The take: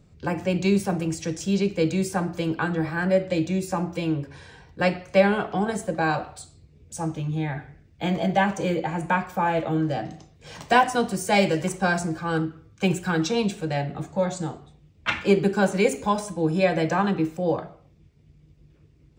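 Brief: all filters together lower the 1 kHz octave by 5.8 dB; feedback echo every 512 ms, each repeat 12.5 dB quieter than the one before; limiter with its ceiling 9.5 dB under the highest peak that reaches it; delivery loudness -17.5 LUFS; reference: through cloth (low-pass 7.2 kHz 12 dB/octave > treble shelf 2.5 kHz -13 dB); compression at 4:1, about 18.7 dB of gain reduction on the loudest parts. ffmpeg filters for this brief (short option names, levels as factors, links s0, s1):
-af "equalizer=f=1000:t=o:g=-6,acompressor=threshold=0.0126:ratio=4,alimiter=level_in=2.51:limit=0.0631:level=0:latency=1,volume=0.398,lowpass=7200,highshelf=f=2500:g=-13,aecho=1:1:512|1024|1536:0.237|0.0569|0.0137,volume=17.8"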